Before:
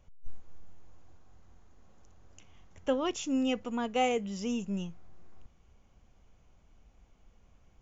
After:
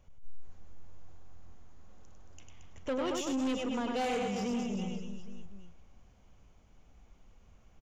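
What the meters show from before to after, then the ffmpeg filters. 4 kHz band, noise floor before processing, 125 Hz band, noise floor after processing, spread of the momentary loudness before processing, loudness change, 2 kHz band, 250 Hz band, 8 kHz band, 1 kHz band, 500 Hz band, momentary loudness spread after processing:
−2.0 dB, −63 dBFS, 0.0 dB, −61 dBFS, 8 LU, −2.0 dB, −1.5 dB, −1.0 dB, can't be measured, −2.5 dB, −2.0 dB, 14 LU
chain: -af "aecho=1:1:100|225|381.2|576.6|820.7:0.631|0.398|0.251|0.158|0.1,asoftclip=type=tanh:threshold=-28.5dB"

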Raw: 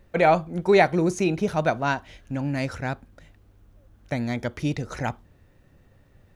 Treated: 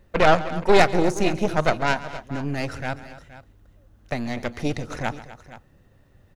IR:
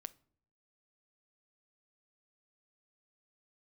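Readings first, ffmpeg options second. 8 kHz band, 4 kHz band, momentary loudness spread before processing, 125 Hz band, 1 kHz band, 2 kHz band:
+3.0 dB, +6.0 dB, 13 LU, −1.0 dB, +2.0 dB, +2.5 dB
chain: -filter_complex "[0:a]bandreject=frequency=2300:width=19,aeval=exprs='0.562*(cos(1*acos(clip(val(0)/0.562,-1,1)))-cos(1*PI/2))+0.126*(cos(6*acos(clip(val(0)/0.562,-1,1)))-cos(6*PI/2))':channel_layout=same,asplit=2[link_01][link_02];[link_02]aecho=0:1:137|250|473:0.141|0.15|0.15[link_03];[link_01][link_03]amix=inputs=2:normalize=0"

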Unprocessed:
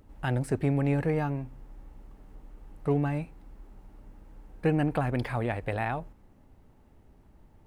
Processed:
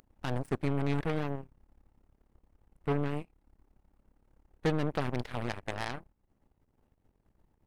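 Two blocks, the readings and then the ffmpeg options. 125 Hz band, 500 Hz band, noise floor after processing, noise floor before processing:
−6.0 dB, −4.5 dB, −76 dBFS, −58 dBFS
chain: -af "acompressor=mode=upward:threshold=-42dB:ratio=2.5,aeval=exprs='0.2*(cos(1*acos(clip(val(0)/0.2,-1,1)))-cos(1*PI/2))+0.00126*(cos(5*acos(clip(val(0)/0.2,-1,1)))-cos(5*PI/2))+0.0141*(cos(6*acos(clip(val(0)/0.2,-1,1)))-cos(6*PI/2))+0.0251*(cos(7*acos(clip(val(0)/0.2,-1,1)))-cos(7*PI/2))+0.0316*(cos(8*acos(clip(val(0)/0.2,-1,1)))-cos(8*PI/2))':channel_layout=same,volume=-4dB"

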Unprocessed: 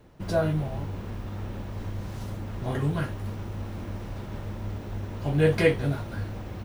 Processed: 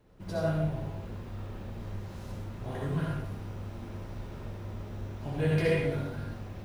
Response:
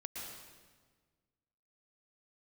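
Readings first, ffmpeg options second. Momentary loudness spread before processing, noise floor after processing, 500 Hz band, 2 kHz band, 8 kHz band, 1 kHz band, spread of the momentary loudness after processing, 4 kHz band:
13 LU, −43 dBFS, −5.5 dB, −5.5 dB, can't be measured, −5.0 dB, 14 LU, −5.5 dB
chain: -filter_complex "[1:a]atrim=start_sample=2205,asetrate=83790,aresample=44100[link_01];[0:a][link_01]afir=irnorm=-1:irlink=0,volume=1.5dB"

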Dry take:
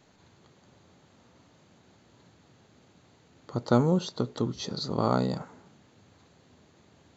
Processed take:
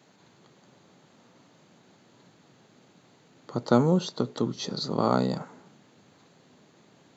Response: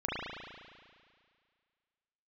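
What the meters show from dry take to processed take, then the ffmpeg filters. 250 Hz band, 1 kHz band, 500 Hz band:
+2.0 dB, +2.0 dB, +2.0 dB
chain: -af "highpass=frequency=130:width=0.5412,highpass=frequency=130:width=1.3066,volume=2dB"

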